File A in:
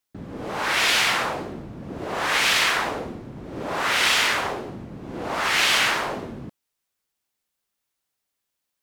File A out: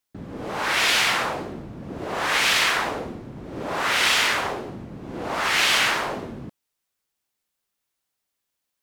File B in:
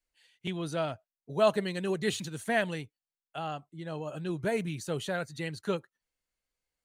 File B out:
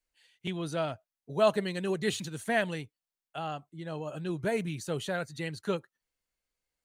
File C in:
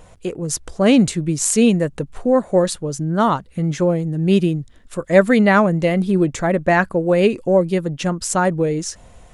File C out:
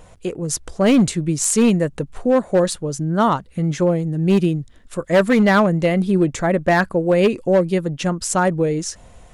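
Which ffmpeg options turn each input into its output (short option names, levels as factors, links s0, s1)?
-af "asoftclip=type=hard:threshold=0.355"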